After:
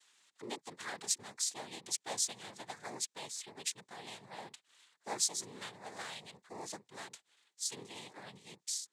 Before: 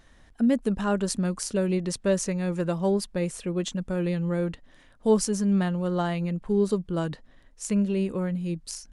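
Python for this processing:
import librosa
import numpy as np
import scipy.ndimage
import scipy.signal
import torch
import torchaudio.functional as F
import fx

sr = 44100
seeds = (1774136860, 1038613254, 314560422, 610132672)

y = fx.octave_divider(x, sr, octaves=2, level_db=-3.0)
y = fx.low_shelf(y, sr, hz=130.0, db=-6.5)
y = fx.noise_vocoder(y, sr, seeds[0], bands=6)
y = np.diff(y, prepend=0.0)
y = y * 10.0 ** (2.5 / 20.0)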